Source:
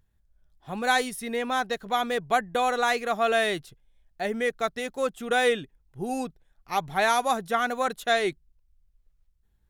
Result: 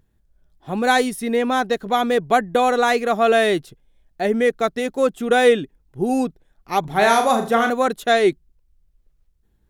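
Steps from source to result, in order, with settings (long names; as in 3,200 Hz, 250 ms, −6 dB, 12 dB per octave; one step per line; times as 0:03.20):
parametric band 310 Hz +8.5 dB 1.8 octaves
0:06.80–0:07.70: flutter between parallel walls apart 6.7 metres, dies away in 0.37 s
level +4 dB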